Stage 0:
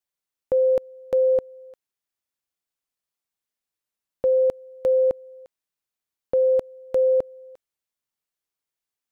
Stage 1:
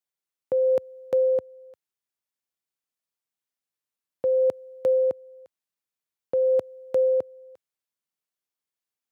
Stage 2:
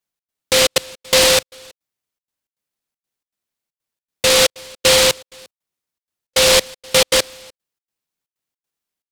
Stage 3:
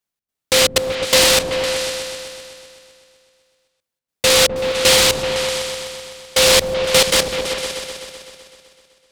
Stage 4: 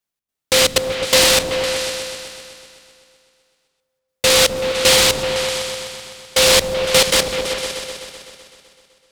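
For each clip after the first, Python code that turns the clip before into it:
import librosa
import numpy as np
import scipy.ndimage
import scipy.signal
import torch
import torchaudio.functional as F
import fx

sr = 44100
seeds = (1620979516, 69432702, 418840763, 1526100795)

y1 = scipy.signal.sosfilt(scipy.signal.butter(4, 87.0, 'highpass', fs=sr, output='sos'), x)
y1 = fx.rider(y1, sr, range_db=10, speed_s=0.5)
y1 = y1 * 10.0 ** (-1.5 / 20.0)
y2 = fx.step_gate(y1, sr, bpm=158, pattern='xx.xxxx.', floor_db=-60.0, edge_ms=4.5)
y2 = fx.dynamic_eq(y2, sr, hz=700.0, q=2.1, threshold_db=-38.0, ratio=4.0, max_db=4)
y2 = fx.noise_mod_delay(y2, sr, seeds[0], noise_hz=3500.0, depth_ms=0.32)
y2 = y2 * 10.0 ** (7.0 / 20.0)
y3 = fx.echo_opening(y2, sr, ms=127, hz=200, octaves=2, feedback_pct=70, wet_db=-3)
y4 = fx.rev_plate(y3, sr, seeds[1], rt60_s=2.8, hf_ratio=0.75, predelay_ms=0, drr_db=18.0)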